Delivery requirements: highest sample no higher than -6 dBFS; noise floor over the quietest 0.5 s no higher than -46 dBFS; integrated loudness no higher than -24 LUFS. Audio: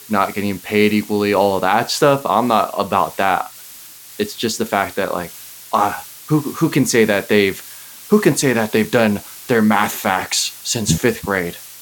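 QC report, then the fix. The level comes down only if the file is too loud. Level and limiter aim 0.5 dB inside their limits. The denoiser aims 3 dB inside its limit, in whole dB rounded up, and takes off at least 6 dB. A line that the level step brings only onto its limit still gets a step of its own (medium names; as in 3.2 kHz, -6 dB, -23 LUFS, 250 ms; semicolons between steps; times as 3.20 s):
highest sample -1.5 dBFS: fail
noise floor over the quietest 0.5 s -39 dBFS: fail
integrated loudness -17.5 LUFS: fail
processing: noise reduction 6 dB, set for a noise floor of -39 dBFS; trim -7 dB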